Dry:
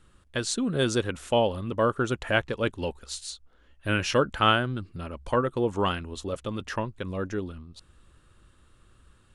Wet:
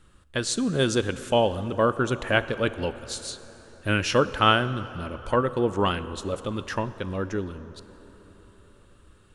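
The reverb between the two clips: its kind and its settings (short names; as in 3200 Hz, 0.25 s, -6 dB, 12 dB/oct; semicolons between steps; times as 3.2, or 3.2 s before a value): plate-style reverb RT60 4.5 s, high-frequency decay 0.55×, DRR 13.5 dB; gain +2 dB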